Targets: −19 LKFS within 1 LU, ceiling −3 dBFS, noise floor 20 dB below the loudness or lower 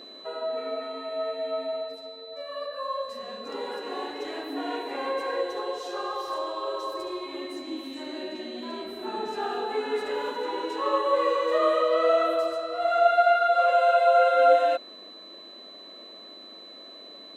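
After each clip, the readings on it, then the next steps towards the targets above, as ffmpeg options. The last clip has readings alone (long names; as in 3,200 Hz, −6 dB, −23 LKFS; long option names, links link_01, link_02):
interfering tone 4,000 Hz; level of the tone −44 dBFS; integrated loudness −26.5 LKFS; sample peak −8.0 dBFS; target loudness −19.0 LKFS
→ -af "bandreject=frequency=4000:width=30"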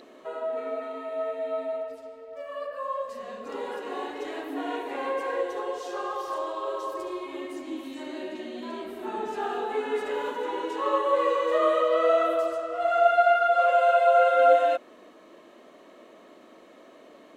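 interfering tone none found; integrated loudness −26.5 LKFS; sample peak −8.5 dBFS; target loudness −19.0 LKFS
→ -af "volume=7.5dB,alimiter=limit=-3dB:level=0:latency=1"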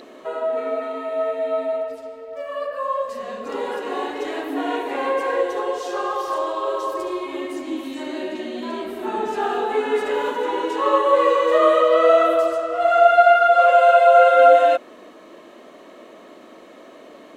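integrated loudness −19.0 LKFS; sample peak −3.0 dBFS; background noise floor −44 dBFS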